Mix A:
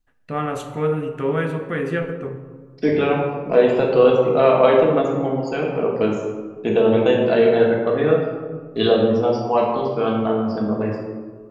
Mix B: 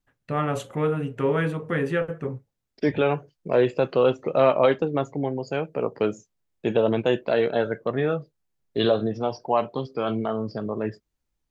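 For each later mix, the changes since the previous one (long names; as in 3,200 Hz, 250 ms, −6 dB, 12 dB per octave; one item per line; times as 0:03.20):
reverb: off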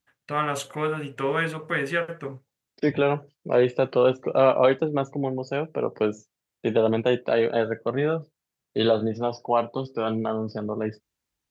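first voice: add tilt shelving filter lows −6.5 dB, about 750 Hz
master: add high-pass filter 71 Hz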